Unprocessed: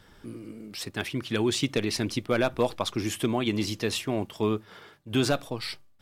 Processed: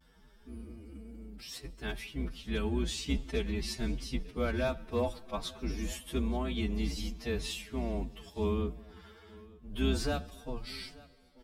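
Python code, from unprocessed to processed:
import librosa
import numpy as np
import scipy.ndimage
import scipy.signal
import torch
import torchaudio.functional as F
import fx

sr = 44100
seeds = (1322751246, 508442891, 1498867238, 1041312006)

p1 = fx.octave_divider(x, sr, octaves=2, level_db=4.0)
p2 = p1 + fx.echo_single(p1, sr, ms=472, db=-22.0, dry=0)
p3 = fx.rev_plate(p2, sr, seeds[0], rt60_s=2.1, hf_ratio=0.8, predelay_ms=0, drr_db=20.0)
p4 = fx.vibrato(p3, sr, rate_hz=0.41, depth_cents=30.0)
p5 = fx.stretch_vocoder(p4, sr, factor=1.9)
p6 = p5 + 0.36 * np.pad(p5, (int(4.5 * sr / 1000.0), 0))[:len(p5)]
y = p6 * 10.0 ** (-9.0 / 20.0)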